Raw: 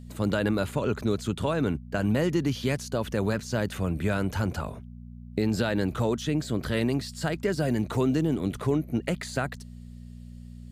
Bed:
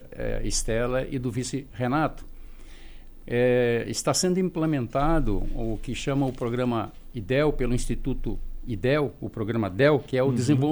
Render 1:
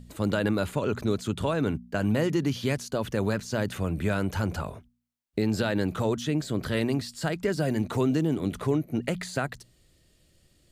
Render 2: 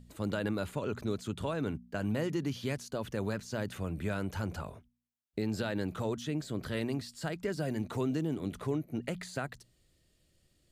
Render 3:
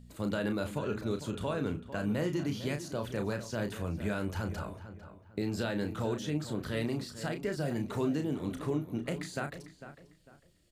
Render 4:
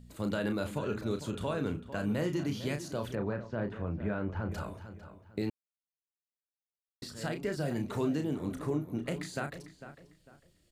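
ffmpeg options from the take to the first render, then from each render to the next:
-af "bandreject=f=60:t=h:w=4,bandreject=f=120:t=h:w=4,bandreject=f=180:t=h:w=4,bandreject=f=240:t=h:w=4"
-af "volume=-7.5dB"
-filter_complex "[0:a]asplit=2[a][b];[b]adelay=34,volume=-7dB[c];[a][c]amix=inputs=2:normalize=0,asplit=2[d][e];[e]adelay=450,lowpass=f=2.6k:p=1,volume=-12dB,asplit=2[f][g];[g]adelay=450,lowpass=f=2.6k:p=1,volume=0.32,asplit=2[h][i];[i]adelay=450,lowpass=f=2.6k:p=1,volume=0.32[j];[d][f][h][j]amix=inputs=4:normalize=0"
-filter_complex "[0:a]asettb=1/sr,asplit=3[a][b][c];[a]atrim=end=3.154[d];[b]atrim=start=3.15:end=4.52,asetpts=PTS-STARTPTS,afade=t=in:d=0.004:c=qsin,afade=t=out:st=1.366:d=0.004:c=qsin,lowpass=1.7k[e];[c]atrim=start=4.516[f];[d][e]acrossfade=d=0.004:c1=hsin:c2=qsin[g];[g][f]acrossfade=d=0.004:c1=qsin:c2=hsin,asettb=1/sr,asplit=3[h][i][j];[h]atrim=end=8.364[k];[i]atrim=start=8.36:end=8.98,asetpts=PTS-STARTPTS,afade=t=in:d=0.004:c=qsin,afade=t=out:st=0.616:d=0.004:c=qsin,equalizer=f=3.2k:w=1.7:g=-6.5[l];[j]atrim=start=8.976[m];[k][l]acrossfade=d=0.004:c1=hsin:c2=qsin[n];[n][m]acrossfade=d=0.004:c1=qsin:c2=hsin,asplit=3[o][p][q];[o]atrim=end=5.5,asetpts=PTS-STARTPTS,afade=t=out:st=5.496:d=0.004:c=hsin[r];[p]atrim=start=5.5:end=7.02,asetpts=PTS-STARTPTS,volume=0[s];[q]atrim=start=7.02,asetpts=PTS-STARTPTS,afade=t=in:d=0.004:c=hsin[t];[r][s][t]concat=n=3:v=0:a=1"

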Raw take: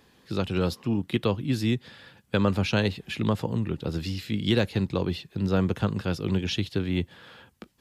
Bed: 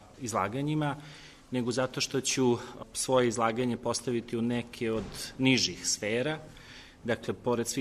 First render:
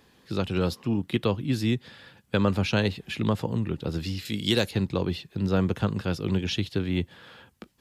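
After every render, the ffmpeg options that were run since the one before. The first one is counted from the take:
-filter_complex "[0:a]asettb=1/sr,asplit=3[a][b][c];[a]atrim=end=4.254[d];[b]atrim=start=4.25:end=4.71,asetpts=PTS-STARTPTS,afade=t=in:d=0.004:c=qsin,afade=t=out:st=0.456:d=0.004:c=qsin,bass=f=250:g=-4,treble=f=4k:g=11[e];[c]atrim=start=4.706[f];[d][e]acrossfade=d=0.004:c1=hsin:c2=qsin[g];[g][f]acrossfade=d=0.004:c1=qsin:c2=hsin"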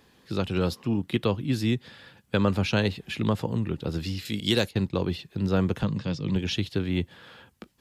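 -filter_complex "[0:a]asettb=1/sr,asplit=3[a][b][c];[a]atrim=end=4.404[d];[b]atrim=start=4.4:end=5.19,asetpts=PTS-STARTPTS,afade=t=in:d=0.004:c=qsin,afade=t=out:st=0.786:d=0.004:c=qsin,agate=range=-33dB:threshold=-33dB:ratio=3:release=100:detection=peak[e];[c]atrim=start=5.186[f];[d][e]acrossfade=d=0.004:c1=hsin:c2=qsin[g];[g][f]acrossfade=d=0.004:c1=qsin:c2=hsin,asettb=1/sr,asplit=3[h][i][j];[h]atrim=end=5.834[k];[i]atrim=start=5.83:end=6.36,asetpts=PTS-STARTPTS,afade=t=in:d=0.004:c=qsin,afade=t=out:st=0.526:d=0.004:c=qsin,highpass=110,equalizer=f=140:t=q:w=4:g=8,equalizer=f=390:t=q:w=4:g=-9,equalizer=f=730:t=q:w=4:g=-8,equalizer=f=1.4k:t=q:w=4:g=-10,equalizer=f=2.7k:t=q:w=4:g=-3,lowpass=f=6.8k:w=0.5412,lowpass=f=6.8k:w=1.3066[l];[j]atrim=start=6.356[m];[k][l]acrossfade=d=0.004:c1=hsin:c2=qsin[n];[n][m]acrossfade=d=0.004:c1=qsin:c2=hsin"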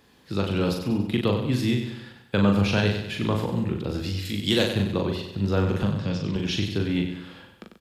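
-filter_complex "[0:a]asplit=2[a][b];[b]adelay=40,volume=-4dB[c];[a][c]amix=inputs=2:normalize=0,aecho=1:1:95|190|285|380|475|570:0.398|0.191|0.0917|0.044|0.0211|0.0101"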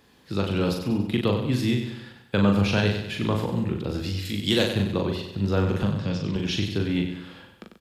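-af anull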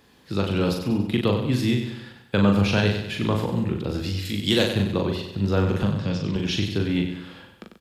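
-af "volume=1.5dB"

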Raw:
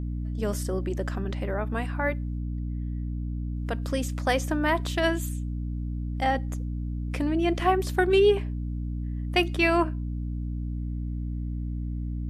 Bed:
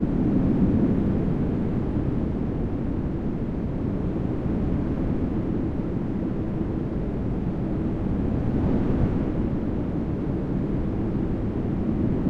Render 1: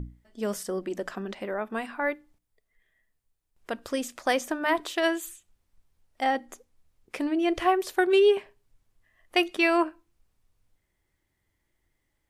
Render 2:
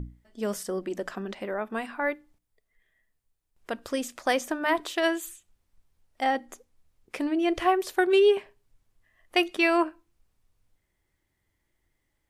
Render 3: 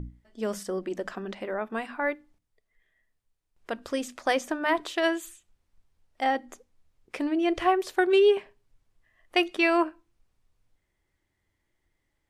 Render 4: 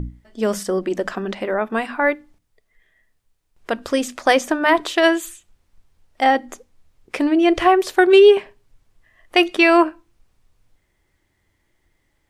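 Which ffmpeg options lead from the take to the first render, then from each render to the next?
-af "bandreject=f=60:t=h:w=6,bandreject=f=120:t=h:w=6,bandreject=f=180:t=h:w=6,bandreject=f=240:t=h:w=6,bandreject=f=300:t=h:w=6"
-af anull
-af "highshelf=f=11k:g=-11.5,bandreject=f=50:t=h:w=6,bandreject=f=100:t=h:w=6,bandreject=f=150:t=h:w=6,bandreject=f=200:t=h:w=6,bandreject=f=250:t=h:w=6"
-af "volume=10dB,alimiter=limit=-3dB:level=0:latency=1"

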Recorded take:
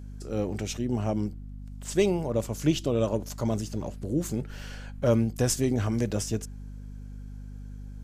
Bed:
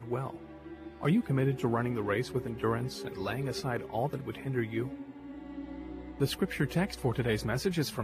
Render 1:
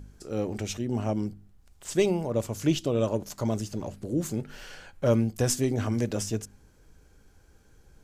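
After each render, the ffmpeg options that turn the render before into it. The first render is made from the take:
-af "bandreject=f=50:t=h:w=4,bandreject=f=100:t=h:w=4,bandreject=f=150:t=h:w=4,bandreject=f=200:t=h:w=4,bandreject=f=250:t=h:w=4"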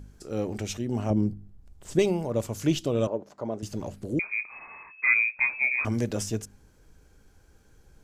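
-filter_complex "[0:a]asettb=1/sr,asplit=3[a][b][c];[a]atrim=end=1.104[d];[b]atrim=start=1.1:end=1.99,asetpts=PTS-STARTPTS,afade=t=in:d=0.004:c=qsin,afade=t=out:st=0.886:d=0.004:c=qsin,tiltshelf=f=680:g=7[e];[c]atrim=start=1.986[f];[d][e]acrossfade=d=0.004:c1=hsin:c2=qsin[g];[g][f]acrossfade=d=0.004:c1=qsin:c2=hsin,asettb=1/sr,asplit=3[h][i][j];[h]atrim=end=3.074[k];[i]atrim=start=3.07:end=3.63,asetpts=PTS-STARTPTS,afade=t=in:d=0.004:c=qsin,afade=t=out:st=0.556:d=0.004:c=qsin,bandpass=f=570:t=q:w=0.87[l];[j]atrim=start=3.626[m];[k][l]acrossfade=d=0.004:c1=hsin:c2=qsin[n];[n][m]acrossfade=d=0.004:c1=qsin:c2=hsin,asettb=1/sr,asplit=3[o][p][q];[o]atrim=end=4.194[r];[p]atrim=start=4.19:end=5.85,asetpts=PTS-STARTPTS,afade=t=in:d=0.004:c=qsin,afade=t=out:st=1.656:d=0.004:c=qsin,lowpass=f=2.2k:t=q:w=0.5098,lowpass=f=2.2k:t=q:w=0.6013,lowpass=f=2.2k:t=q:w=0.9,lowpass=f=2.2k:t=q:w=2.563,afreqshift=-2600[s];[q]atrim=start=5.846[t];[r][s]acrossfade=d=0.004:c1=hsin:c2=qsin[u];[u][t]acrossfade=d=0.004:c1=qsin:c2=hsin"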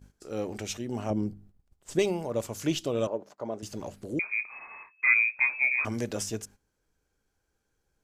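-af "agate=range=-14dB:threshold=-46dB:ratio=16:detection=peak,lowshelf=f=270:g=-8.5"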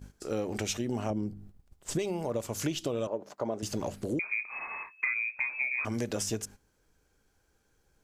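-filter_complex "[0:a]asplit=2[a][b];[b]alimiter=limit=-19.5dB:level=0:latency=1:release=137,volume=1dB[c];[a][c]amix=inputs=2:normalize=0,acompressor=threshold=-28dB:ratio=12"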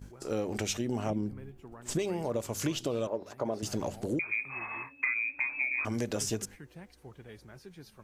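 -filter_complex "[1:a]volume=-19.5dB[a];[0:a][a]amix=inputs=2:normalize=0"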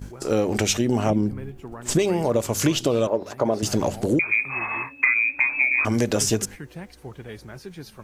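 -af "volume=11dB"

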